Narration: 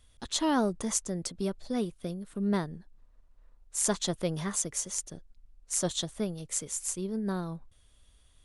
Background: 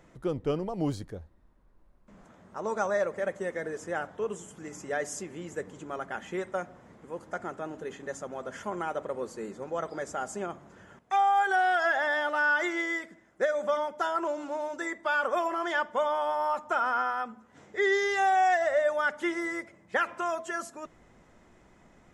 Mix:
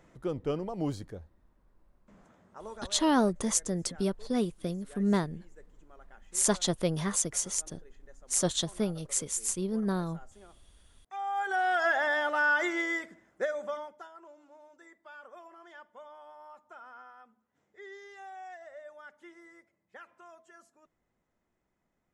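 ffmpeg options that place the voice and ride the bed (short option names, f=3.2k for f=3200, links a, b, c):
-filter_complex "[0:a]adelay=2600,volume=2dB[a];[1:a]volume=17.5dB,afade=t=out:st=1.99:d=0.95:silence=0.125893,afade=t=in:st=11.07:d=0.81:silence=0.1,afade=t=out:st=13.04:d=1.05:silence=0.0841395[b];[a][b]amix=inputs=2:normalize=0"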